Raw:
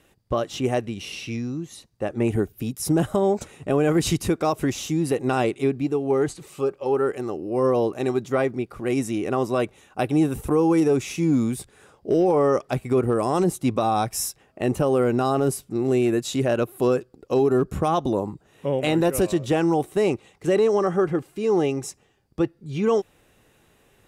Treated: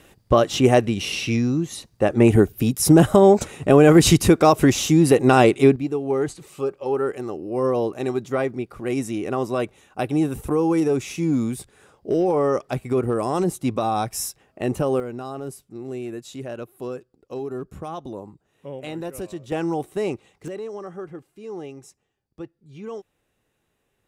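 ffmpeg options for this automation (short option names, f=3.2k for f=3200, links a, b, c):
-af "asetnsamples=n=441:p=0,asendcmd='5.76 volume volume -1dB;15 volume volume -11dB;19.52 volume volume -4dB;20.48 volume volume -13.5dB',volume=8dB"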